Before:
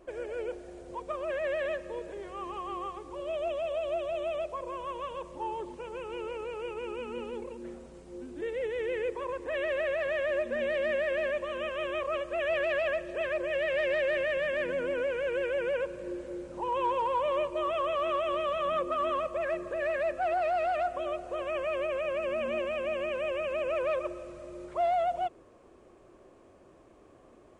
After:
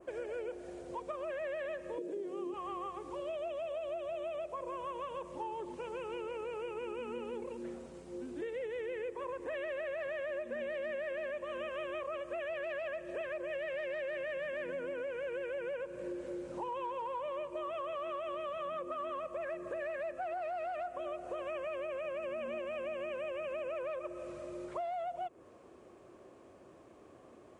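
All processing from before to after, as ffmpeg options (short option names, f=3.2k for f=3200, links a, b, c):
-filter_complex "[0:a]asettb=1/sr,asplit=3[a][b][c];[a]atrim=end=1.984[d];[b]atrim=start=1.98:end=2.54,asetpts=PTS-STARTPTS,afade=t=in:d=0.004:c=qsin,afade=t=out:st=0.556:d=0.004:c=qsin,highpass=200,equalizer=f=330:t=o:w=1.8:g=14.5,acrossover=split=390|3000[e][f][g];[f]acompressor=threshold=-49dB:ratio=2.5:attack=3.2:release=140:knee=2.83:detection=peak[h];[e][h][g]amix=inputs=3:normalize=0[i];[c]atrim=start=2.536[j];[d][i]acrossfade=d=0.004:c1=hsin:c2=qsin[k];[k][j]acrossfade=d=0.004:c1=qsin:c2=hsin,highpass=84,adynamicequalizer=threshold=0.00158:dfrequency=4200:dqfactor=1.1:tfrequency=4200:tqfactor=1.1:attack=5:release=100:ratio=0.375:range=2.5:mode=cutabove:tftype=bell,acompressor=threshold=-37dB:ratio=6"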